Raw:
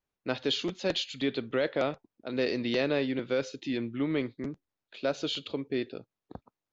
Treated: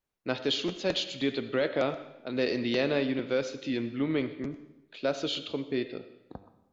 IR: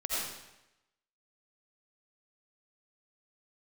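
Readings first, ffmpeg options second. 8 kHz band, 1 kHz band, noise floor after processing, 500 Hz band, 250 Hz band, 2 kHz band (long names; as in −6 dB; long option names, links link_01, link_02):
can't be measured, +0.5 dB, −68 dBFS, +1.0 dB, +1.0 dB, +0.5 dB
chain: -filter_complex "[0:a]bandreject=frequency=99.05:width_type=h:width=4,bandreject=frequency=198.1:width_type=h:width=4,bandreject=frequency=297.15:width_type=h:width=4,bandreject=frequency=396.2:width_type=h:width=4,bandreject=frequency=495.25:width_type=h:width=4,bandreject=frequency=594.3:width_type=h:width=4,bandreject=frequency=693.35:width_type=h:width=4,bandreject=frequency=792.4:width_type=h:width=4,bandreject=frequency=891.45:width_type=h:width=4,bandreject=frequency=990.5:width_type=h:width=4,bandreject=frequency=1089.55:width_type=h:width=4,bandreject=frequency=1188.6:width_type=h:width=4,bandreject=frequency=1287.65:width_type=h:width=4,bandreject=frequency=1386.7:width_type=h:width=4,bandreject=frequency=1485.75:width_type=h:width=4,bandreject=frequency=1584.8:width_type=h:width=4,bandreject=frequency=1683.85:width_type=h:width=4,bandreject=frequency=1782.9:width_type=h:width=4,bandreject=frequency=1881.95:width_type=h:width=4,bandreject=frequency=1981:width_type=h:width=4,bandreject=frequency=2080.05:width_type=h:width=4,bandreject=frequency=2179.1:width_type=h:width=4,bandreject=frequency=2278.15:width_type=h:width=4,bandreject=frequency=2377.2:width_type=h:width=4,bandreject=frequency=2476.25:width_type=h:width=4,bandreject=frequency=2575.3:width_type=h:width=4,bandreject=frequency=2674.35:width_type=h:width=4,bandreject=frequency=2773.4:width_type=h:width=4,bandreject=frequency=2872.45:width_type=h:width=4,bandreject=frequency=2971.5:width_type=h:width=4,bandreject=frequency=3070.55:width_type=h:width=4,bandreject=frequency=3169.6:width_type=h:width=4,bandreject=frequency=3268.65:width_type=h:width=4,bandreject=frequency=3367.7:width_type=h:width=4,bandreject=frequency=3466.75:width_type=h:width=4,bandreject=frequency=3565.8:width_type=h:width=4,bandreject=frequency=3664.85:width_type=h:width=4,asplit=2[link_01][link_02];[1:a]atrim=start_sample=2205[link_03];[link_02][link_03]afir=irnorm=-1:irlink=0,volume=-18dB[link_04];[link_01][link_04]amix=inputs=2:normalize=0"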